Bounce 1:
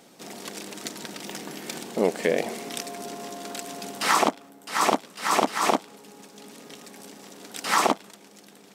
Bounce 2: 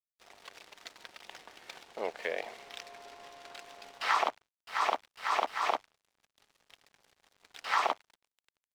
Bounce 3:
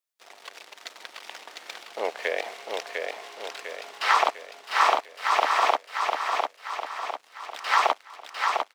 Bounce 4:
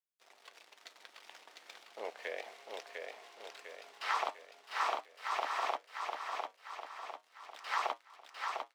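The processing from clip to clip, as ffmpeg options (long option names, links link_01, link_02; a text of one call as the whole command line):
ffmpeg -i in.wav -filter_complex "[0:a]acrossover=split=530 4700:gain=0.0708 1 0.0794[link_01][link_02][link_03];[link_01][link_02][link_03]amix=inputs=3:normalize=0,aeval=exprs='sgn(val(0))*max(abs(val(0))-0.00422,0)':channel_layout=same,volume=-5.5dB" out.wav
ffmpeg -i in.wav -filter_complex "[0:a]highpass=360,asplit=2[link_01][link_02];[link_02]aecho=0:1:701|1402|2103|2804|3505|4206:0.631|0.309|0.151|0.0742|0.0364|0.0178[link_03];[link_01][link_03]amix=inputs=2:normalize=0,volume=7.5dB" out.wav
ffmpeg -i in.wav -af "flanger=delay=7.4:depth=3.2:regen=-69:speed=0.36:shape=sinusoidal,volume=-9dB" out.wav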